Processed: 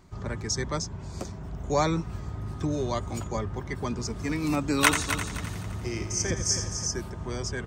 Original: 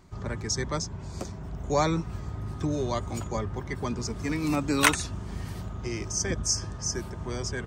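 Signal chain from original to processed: 4.82–6.87 multi-head echo 86 ms, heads first and third, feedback 51%, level -9.5 dB

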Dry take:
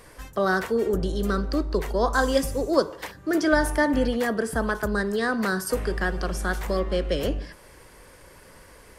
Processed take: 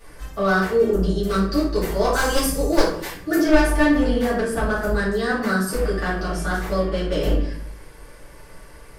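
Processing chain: one-sided fold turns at -16.5 dBFS; 1.28–3.36 high shelf 5400 Hz +10.5 dB; shoebox room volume 70 m³, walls mixed, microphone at 2.5 m; gain -8 dB

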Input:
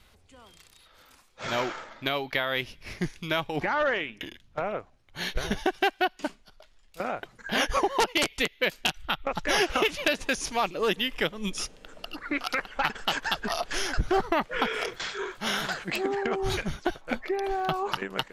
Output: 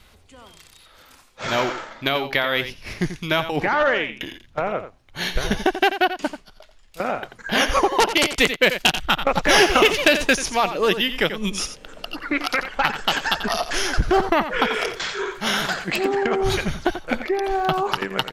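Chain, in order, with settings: on a send: echo 88 ms -11 dB; 8.36–10.37 on the sum: sample leveller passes 1; gain +6.5 dB

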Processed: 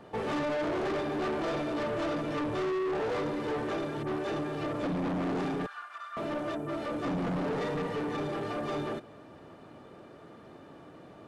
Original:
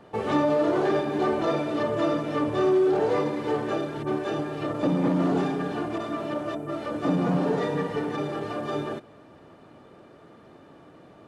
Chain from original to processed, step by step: 5.66–6.17 ladder high-pass 1200 Hz, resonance 65%; soft clip -29 dBFS, distortion -7 dB

